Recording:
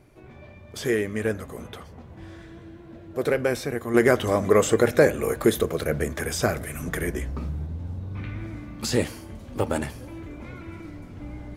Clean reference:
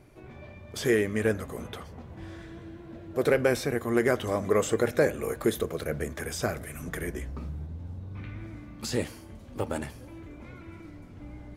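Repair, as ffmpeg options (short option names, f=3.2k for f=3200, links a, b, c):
-af "asetnsamples=n=441:p=0,asendcmd='3.94 volume volume -6dB',volume=0dB"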